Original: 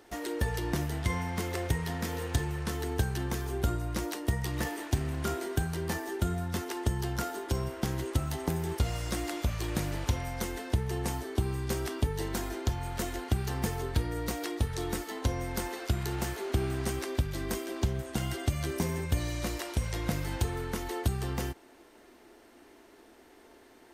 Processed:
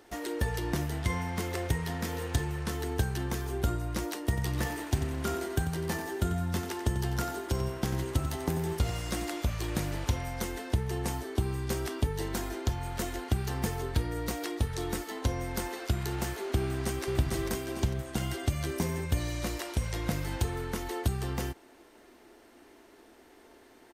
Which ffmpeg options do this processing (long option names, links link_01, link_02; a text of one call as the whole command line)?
ffmpeg -i in.wav -filter_complex "[0:a]asettb=1/sr,asplit=3[link_01][link_02][link_03];[link_01]atrim=end=4.234[link_04];[link_02]atrim=start=4.23:end=9.25,asetpts=PTS-STARTPTS,afade=type=in:duration=0.004:curve=qsin,afade=type=out:start_time=5.016:duration=0.004:curve=qsin,aecho=1:1:92|184|276:0.282|0.0846|0.0254,atrim=end_sample=221382[link_05];[link_03]atrim=start=9.246[link_06];[link_04][link_05]acrossfade=duration=0.004:curve1=hsin:curve2=qsin[link_07];[link_07][link_06]acrossfade=duration=0.004:curve1=qsin:curve2=hsin,asplit=2[link_08][link_09];[link_09]afade=type=in:start_time=16.62:duration=0.01,afade=type=out:start_time=17.03:duration=0.01,aecho=0:1:450|900|1350|1800|2250:0.794328|0.317731|0.127093|0.050837|0.0203348[link_10];[link_08][link_10]amix=inputs=2:normalize=0" out.wav